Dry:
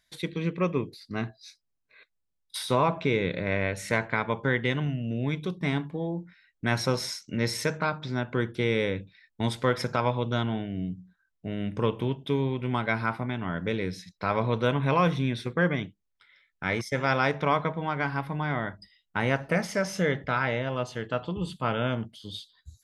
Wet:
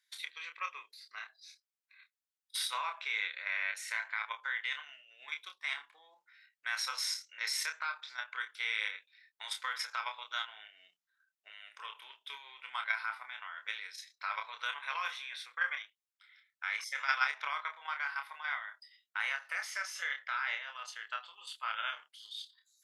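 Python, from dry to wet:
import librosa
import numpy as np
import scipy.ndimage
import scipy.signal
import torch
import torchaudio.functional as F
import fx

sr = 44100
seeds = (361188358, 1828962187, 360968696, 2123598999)

y = scipy.signal.sosfilt(scipy.signal.butter(4, 1200.0, 'highpass', fs=sr, output='sos'), x)
y = fx.level_steps(y, sr, step_db=9)
y = fx.doubler(y, sr, ms=28.0, db=-6)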